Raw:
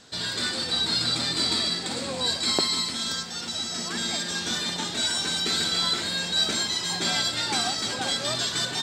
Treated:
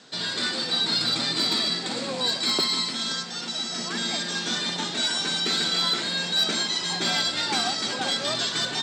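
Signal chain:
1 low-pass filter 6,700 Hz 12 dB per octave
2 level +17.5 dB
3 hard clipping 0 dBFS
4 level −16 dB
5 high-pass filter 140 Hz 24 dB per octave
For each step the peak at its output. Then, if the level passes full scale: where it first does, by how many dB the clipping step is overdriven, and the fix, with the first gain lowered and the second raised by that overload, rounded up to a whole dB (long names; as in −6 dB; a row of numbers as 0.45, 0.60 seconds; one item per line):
−8.5, +9.0, 0.0, −16.0, −12.0 dBFS
step 2, 9.0 dB
step 2 +8.5 dB, step 4 −7 dB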